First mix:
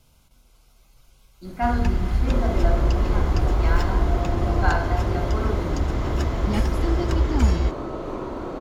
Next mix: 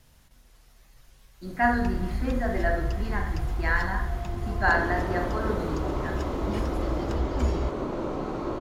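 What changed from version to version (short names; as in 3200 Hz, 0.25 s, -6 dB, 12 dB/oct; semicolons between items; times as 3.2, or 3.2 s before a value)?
speech: remove Butterworth band-stop 1800 Hz, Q 3.8; first sound -8.5 dB; second sound: entry +2.40 s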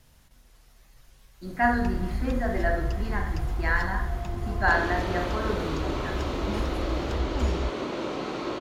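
second sound: add weighting filter D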